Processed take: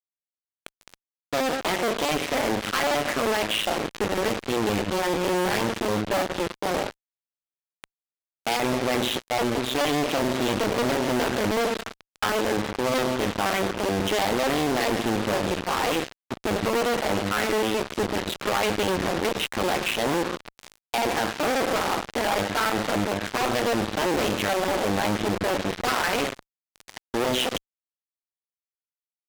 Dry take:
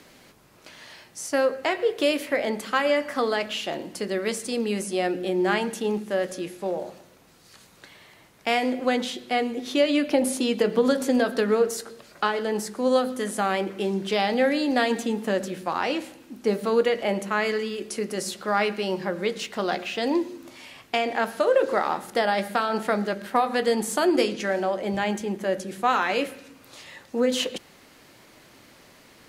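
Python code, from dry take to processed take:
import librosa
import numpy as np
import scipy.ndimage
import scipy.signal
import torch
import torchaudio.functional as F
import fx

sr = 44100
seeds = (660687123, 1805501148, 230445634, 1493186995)

y = fx.cycle_switch(x, sr, every=2, mode='muted')
y = fx.brickwall_lowpass(y, sr, high_hz=4000.0)
y = fx.fuzz(y, sr, gain_db=42.0, gate_db=-38.0)
y = y * 10.0 ** (-6.5 / 20.0)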